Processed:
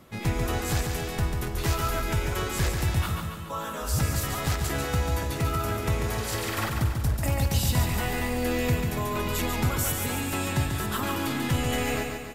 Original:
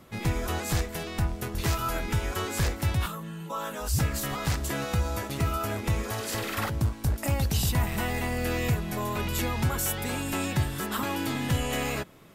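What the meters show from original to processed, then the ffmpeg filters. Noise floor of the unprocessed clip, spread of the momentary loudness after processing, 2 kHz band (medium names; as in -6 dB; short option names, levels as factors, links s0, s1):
-40 dBFS, 4 LU, +1.5 dB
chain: -af "aecho=1:1:142|284|426|568|710|852|994:0.562|0.304|0.164|0.0885|0.0478|0.0258|0.0139"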